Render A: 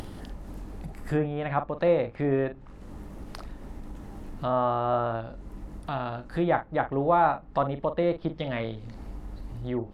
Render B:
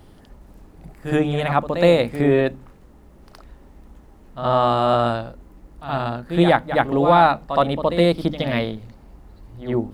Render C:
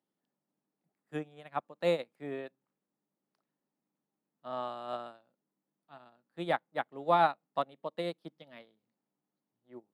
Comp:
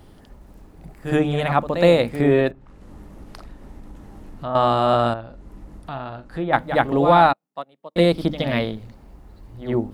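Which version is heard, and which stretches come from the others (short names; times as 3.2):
B
2.51–4.55 from A
5.14–6.53 from A
7.33–7.96 from C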